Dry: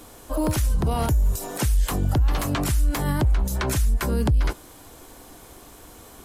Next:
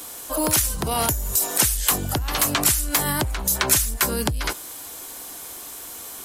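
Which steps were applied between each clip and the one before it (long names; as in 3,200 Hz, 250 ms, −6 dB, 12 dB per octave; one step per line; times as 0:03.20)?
spectral tilt +3 dB per octave
level +4 dB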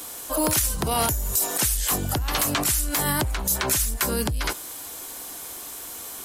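brickwall limiter −10.5 dBFS, peak gain reduction 8 dB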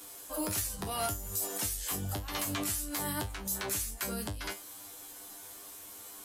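tuned comb filter 99 Hz, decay 0.21 s, harmonics all, mix 90%
level −4 dB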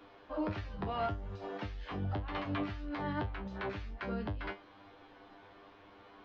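Gaussian smoothing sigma 3.2 samples
level +1 dB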